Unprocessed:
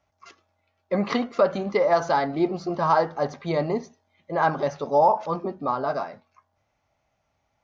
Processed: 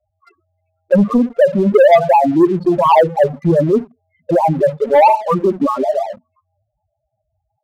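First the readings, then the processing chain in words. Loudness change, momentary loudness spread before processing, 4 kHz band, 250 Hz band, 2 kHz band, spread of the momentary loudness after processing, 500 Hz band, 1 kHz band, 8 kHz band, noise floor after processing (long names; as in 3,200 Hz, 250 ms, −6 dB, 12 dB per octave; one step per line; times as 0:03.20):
+11.0 dB, 9 LU, +4.5 dB, +13.5 dB, +6.0 dB, 8 LU, +11.5 dB, +9.0 dB, can't be measured, −74 dBFS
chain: in parallel at 0 dB: downward compressor 10 to 1, threshold −29 dBFS, peak gain reduction 15.5 dB
on the sum: spectral peaks only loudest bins 4
rotating-speaker cabinet horn 0.9 Hz, later 5.5 Hz, at 0:05.97
leveller curve on the samples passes 2
level +7.5 dB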